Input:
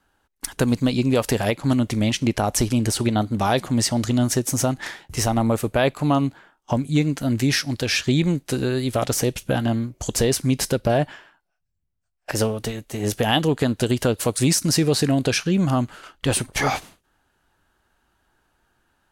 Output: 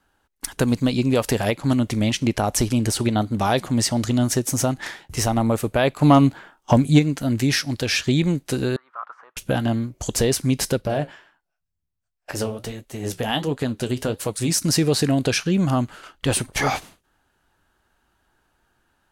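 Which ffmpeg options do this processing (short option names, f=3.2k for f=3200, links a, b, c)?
-filter_complex "[0:a]asplit=3[a][b][c];[a]afade=t=out:st=6.01:d=0.02[d];[b]acontrast=74,afade=t=in:st=6.01:d=0.02,afade=t=out:st=6.98:d=0.02[e];[c]afade=t=in:st=6.98:d=0.02[f];[d][e][f]amix=inputs=3:normalize=0,asettb=1/sr,asplit=3[g][h][i];[g]atrim=end=8.764[j];[h]atrim=start=8.76:end=9.37,asetpts=PTS-STARTPTS,afade=t=in:d=0.004:c=qsin,afade=t=out:st=0.606:d=0.004:c=qsin,asuperpass=centerf=1200:order=4:qfactor=2.8[k];[i]atrim=start=9.366[l];[j][k]acrossfade=d=0.004:c1=hsin:c2=qsin[m];[m][l]acrossfade=d=0.004:c1=qsin:c2=hsin,asplit=3[n][o][p];[n]afade=t=out:st=10.8:d=0.02[q];[o]flanger=delay=5.9:depth=9.9:regen=-58:speed=1.4:shape=triangular,afade=t=in:st=10.8:d=0.02,afade=t=out:st=14.53:d=0.02[r];[p]afade=t=in:st=14.53:d=0.02[s];[q][r][s]amix=inputs=3:normalize=0"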